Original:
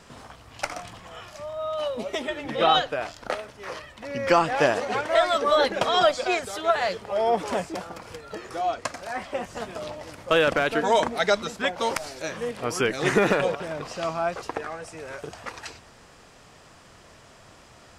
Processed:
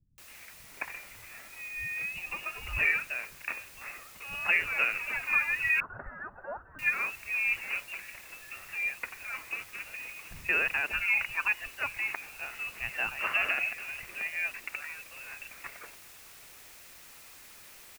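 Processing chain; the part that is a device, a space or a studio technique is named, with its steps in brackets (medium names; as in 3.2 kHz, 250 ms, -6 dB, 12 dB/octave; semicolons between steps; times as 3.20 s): scrambled radio voice (band-pass 370–2800 Hz; frequency inversion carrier 3.1 kHz; white noise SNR 18 dB); bass shelf 160 Hz +4 dB; 5.62–6.61 s: elliptic low-pass 1.5 kHz, stop band 40 dB; bands offset in time lows, highs 180 ms, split 180 Hz; trim -6.5 dB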